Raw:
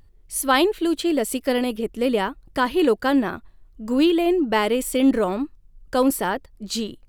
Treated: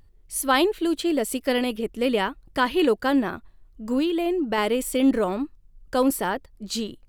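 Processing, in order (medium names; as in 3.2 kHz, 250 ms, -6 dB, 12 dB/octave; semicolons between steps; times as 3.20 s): 1.43–2.86 s: dynamic bell 2.6 kHz, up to +4 dB, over -37 dBFS, Q 0.79; 3.98–4.58 s: compression 4:1, threshold -19 dBFS, peak gain reduction 5.5 dB; trim -2 dB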